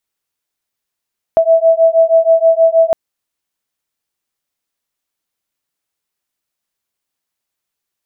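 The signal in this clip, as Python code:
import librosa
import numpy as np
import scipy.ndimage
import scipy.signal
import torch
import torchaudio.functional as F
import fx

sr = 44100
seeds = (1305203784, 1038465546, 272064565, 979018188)

y = fx.two_tone_beats(sr, length_s=1.56, hz=653.0, beat_hz=6.3, level_db=-10.0)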